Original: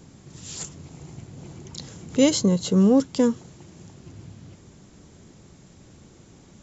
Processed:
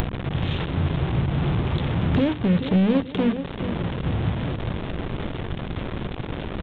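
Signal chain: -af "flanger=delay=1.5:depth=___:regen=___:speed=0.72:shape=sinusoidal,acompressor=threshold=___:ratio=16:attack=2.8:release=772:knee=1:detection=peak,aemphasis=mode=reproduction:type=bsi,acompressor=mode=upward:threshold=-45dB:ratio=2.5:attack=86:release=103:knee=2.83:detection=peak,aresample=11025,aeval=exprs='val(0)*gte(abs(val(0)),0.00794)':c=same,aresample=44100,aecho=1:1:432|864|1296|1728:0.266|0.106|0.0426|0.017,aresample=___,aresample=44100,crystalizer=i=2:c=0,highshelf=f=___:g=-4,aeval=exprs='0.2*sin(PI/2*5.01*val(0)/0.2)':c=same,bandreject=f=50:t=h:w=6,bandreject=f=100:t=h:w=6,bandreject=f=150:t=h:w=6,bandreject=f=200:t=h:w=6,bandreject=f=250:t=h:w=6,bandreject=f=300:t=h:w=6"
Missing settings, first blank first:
2.2, 85, -34dB, 8000, 2500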